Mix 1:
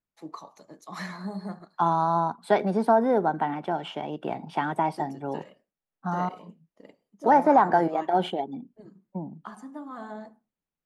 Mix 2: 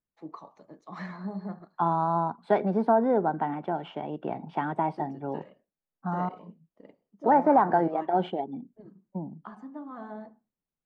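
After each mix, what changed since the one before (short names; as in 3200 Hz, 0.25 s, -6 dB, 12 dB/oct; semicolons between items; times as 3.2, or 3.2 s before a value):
master: add tape spacing loss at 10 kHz 28 dB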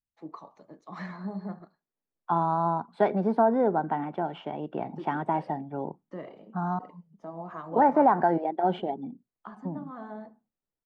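second voice: entry +0.50 s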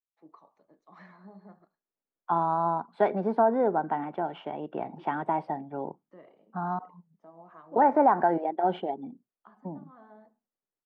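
first voice -11.0 dB; master: add tone controls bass -6 dB, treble -7 dB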